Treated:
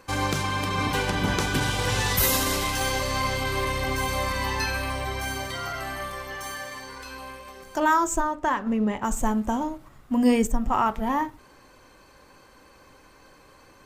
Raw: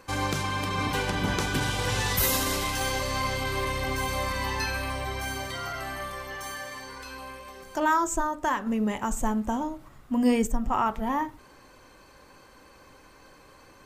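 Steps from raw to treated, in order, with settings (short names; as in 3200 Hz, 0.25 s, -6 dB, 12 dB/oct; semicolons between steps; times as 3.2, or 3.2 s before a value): 8.2–9.03 LPF 4200 Hz -> 2000 Hz 6 dB/oct; in parallel at -8.5 dB: crossover distortion -43 dBFS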